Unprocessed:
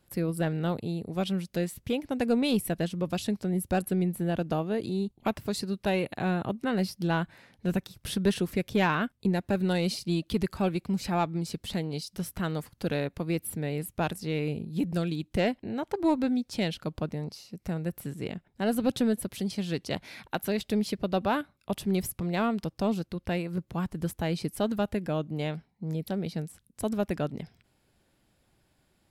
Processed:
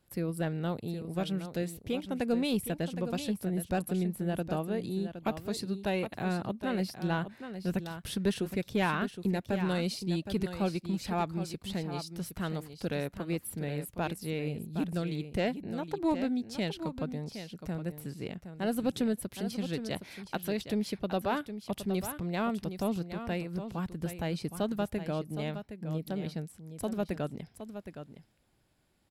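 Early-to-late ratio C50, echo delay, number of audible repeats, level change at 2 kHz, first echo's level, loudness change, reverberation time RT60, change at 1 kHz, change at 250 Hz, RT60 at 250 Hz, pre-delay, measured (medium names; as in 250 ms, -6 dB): no reverb, 766 ms, 1, -3.5 dB, -10.0 dB, -3.5 dB, no reverb, -3.5 dB, -3.5 dB, no reverb, no reverb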